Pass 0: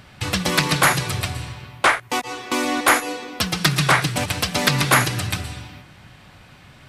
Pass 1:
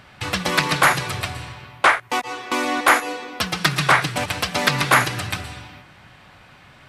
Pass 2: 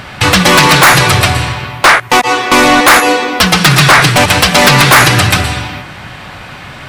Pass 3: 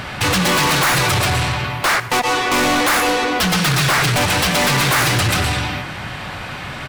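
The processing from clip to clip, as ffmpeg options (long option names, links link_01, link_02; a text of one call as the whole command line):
ffmpeg -i in.wav -af "equalizer=frequency=1200:width=0.34:gain=7,volume=-5dB" out.wav
ffmpeg -i in.wav -af "aeval=exprs='0.891*sin(PI/2*2.24*val(0)/0.891)':channel_layout=same,apsyclip=10dB,volume=-1.5dB" out.wav
ffmpeg -i in.wav -af "asoftclip=type=tanh:threshold=-14.5dB,aecho=1:1:98:0.133" out.wav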